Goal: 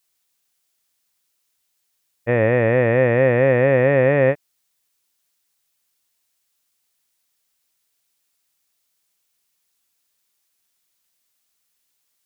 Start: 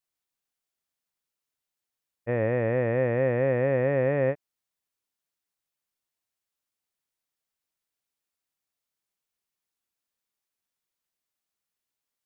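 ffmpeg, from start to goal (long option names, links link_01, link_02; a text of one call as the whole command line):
ffmpeg -i in.wav -af "highshelf=frequency=2200:gain=9,volume=8dB" out.wav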